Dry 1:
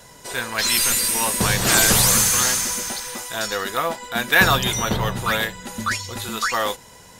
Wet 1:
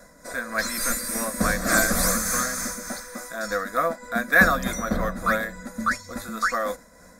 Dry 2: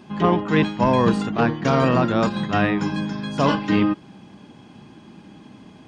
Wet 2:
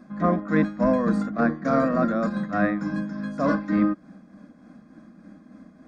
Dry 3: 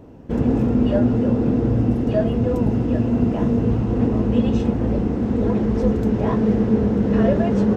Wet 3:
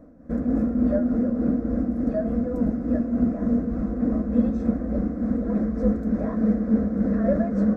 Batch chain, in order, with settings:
high-shelf EQ 2,900 Hz −9.5 dB
amplitude tremolo 3.4 Hz, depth 43%
phaser with its sweep stopped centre 590 Hz, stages 8
loudness normalisation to −24 LKFS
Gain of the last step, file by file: +3.5, +1.0, −0.5 decibels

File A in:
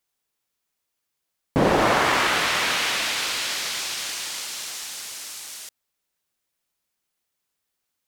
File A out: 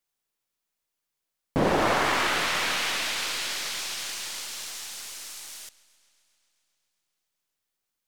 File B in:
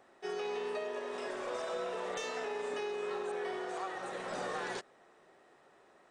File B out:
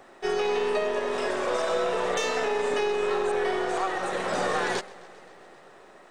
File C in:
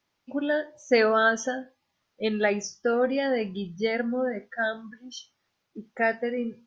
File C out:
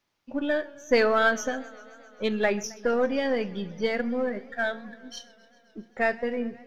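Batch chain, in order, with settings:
gain on one half-wave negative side −3 dB
feedback echo with a swinging delay time 132 ms, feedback 77%, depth 119 cents, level −22.5 dB
loudness normalisation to −27 LKFS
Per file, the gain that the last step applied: −3.0, +12.5, +1.0 decibels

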